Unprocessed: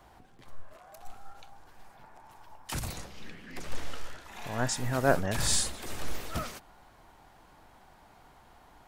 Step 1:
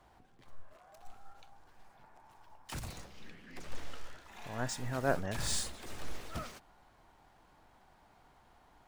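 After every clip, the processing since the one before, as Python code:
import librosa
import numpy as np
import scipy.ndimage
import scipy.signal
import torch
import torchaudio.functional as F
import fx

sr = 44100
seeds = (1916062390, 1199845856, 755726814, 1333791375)

y = scipy.ndimage.median_filter(x, 3, mode='constant')
y = y * 10.0 ** (-6.5 / 20.0)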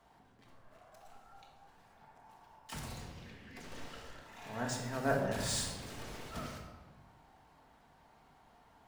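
y = fx.highpass(x, sr, hz=71.0, slope=6)
y = fx.room_shoebox(y, sr, seeds[0], volume_m3=740.0, walls='mixed', distance_m=1.6)
y = y * 10.0 ** (-3.0 / 20.0)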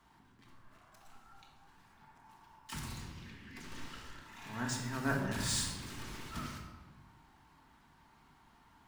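y = fx.band_shelf(x, sr, hz=580.0, db=-10.5, octaves=1.0)
y = y * 10.0 ** (1.5 / 20.0)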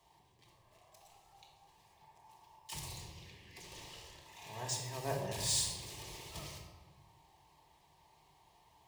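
y = fx.highpass(x, sr, hz=120.0, slope=6)
y = fx.fixed_phaser(y, sr, hz=590.0, stages=4)
y = y * 10.0 ** (3.0 / 20.0)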